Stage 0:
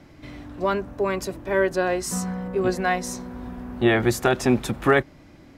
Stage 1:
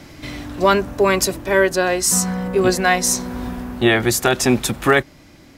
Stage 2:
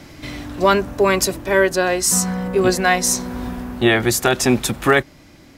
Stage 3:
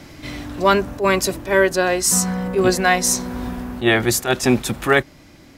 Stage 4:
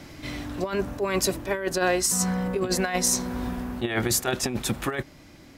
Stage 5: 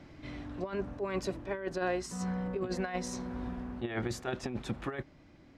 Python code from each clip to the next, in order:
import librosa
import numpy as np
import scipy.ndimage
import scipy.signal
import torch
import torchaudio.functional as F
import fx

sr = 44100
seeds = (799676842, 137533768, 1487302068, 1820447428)

y1 = fx.high_shelf(x, sr, hz=2800.0, db=11.0)
y1 = fx.rider(y1, sr, range_db=4, speed_s=0.5)
y1 = F.gain(torch.from_numpy(y1), 4.5).numpy()
y2 = y1
y3 = fx.attack_slew(y2, sr, db_per_s=230.0)
y4 = fx.over_compress(y3, sr, threshold_db=-18.0, ratio=-0.5)
y4 = F.gain(torch.from_numpy(y4), -5.5).numpy()
y5 = fx.spacing_loss(y4, sr, db_at_10k=20)
y5 = F.gain(torch.from_numpy(y5), -7.5).numpy()